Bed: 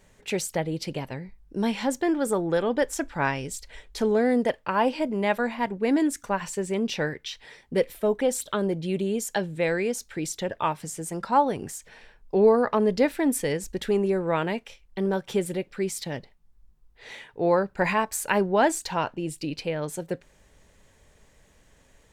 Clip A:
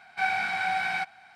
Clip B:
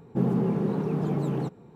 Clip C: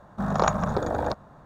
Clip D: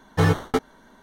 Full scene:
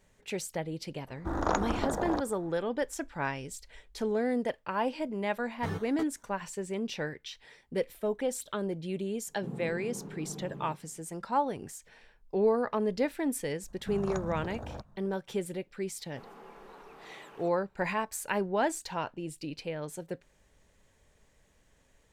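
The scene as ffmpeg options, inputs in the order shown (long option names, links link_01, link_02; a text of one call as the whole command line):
ffmpeg -i bed.wav -i cue0.wav -i cue1.wav -i cue2.wav -i cue3.wav -filter_complex "[3:a]asplit=2[link_01][link_02];[2:a]asplit=2[link_03][link_04];[0:a]volume=-7.5dB[link_05];[link_01]aeval=exprs='val(0)*sin(2*PI*130*n/s)':channel_layout=same[link_06];[link_02]bass=frequency=250:gain=10,treble=frequency=4000:gain=5[link_07];[link_04]highpass=1000[link_08];[link_06]atrim=end=1.45,asetpts=PTS-STARTPTS,volume=-2.5dB,afade=type=in:duration=0.004:curve=hsin,afade=type=out:start_time=1.446:duration=0.004:curve=hsin,adelay=1070[link_09];[4:a]atrim=end=1.02,asetpts=PTS-STARTPTS,volume=-17.5dB,afade=type=in:duration=0.004:curve=hsin,afade=type=out:start_time=1.016:duration=0.004:curve=hsin,adelay=240345S[link_10];[link_03]atrim=end=1.75,asetpts=PTS-STARTPTS,volume=-16dB,afade=type=in:duration=0.004:curve=hsin,afade=type=out:start_time=1.746:duration=0.004:curve=hsin,adelay=9270[link_11];[link_07]atrim=end=1.45,asetpts=PTS-STARTPTS,volume=-18dB,afade=type=in:duration=0.004:curve=hsin,afade=type=out:start_time=1.446:duration=0.004:curve=hsin,adelay=13680[link_12];[link_08]atrim=end=1.75,asetpts=PTS-STARTPTS,volume=-7.5dB,afade=type=in:duration=0.004:curve=hsin,afade=type=out:start_time=1.746:duration=0.004:curve=hsin,adelay=16000[link_13];[link_05][link_09][link_10][link_11][link_12][link_13]amix=inputs=6:normalize=0" out.wav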